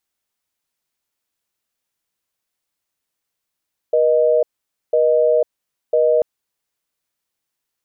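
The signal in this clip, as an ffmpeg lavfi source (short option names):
-f lavfi -i "aevalsrc='0.188*(sin(2*PI*480*t)+sin(2*PI*620*t))*clip(min(mod(t,1),0.5-mod(t,1))/0.005,0,1)':d=2.29:s=44100"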